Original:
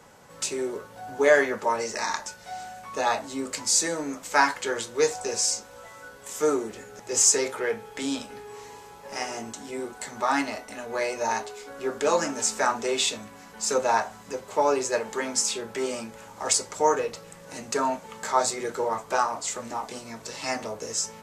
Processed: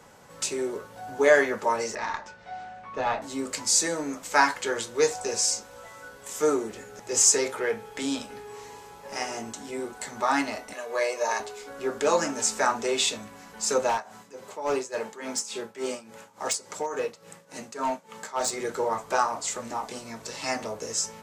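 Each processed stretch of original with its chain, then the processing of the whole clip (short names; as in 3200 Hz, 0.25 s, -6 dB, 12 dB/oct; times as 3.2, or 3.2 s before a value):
1.95–3.22 LPF 2900 Hz + tube stage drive 16 dB, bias 0.4
10.73–11.4 HPF 360 Hz + notch 1500 Hz, Q 30 + comb 1.8 ms, depth 40%
13.89–18.53 HPF 130 Hz + tremolo 3.5 Hz, depth 81% + overloaded stage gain 21 dB
whole clip: dry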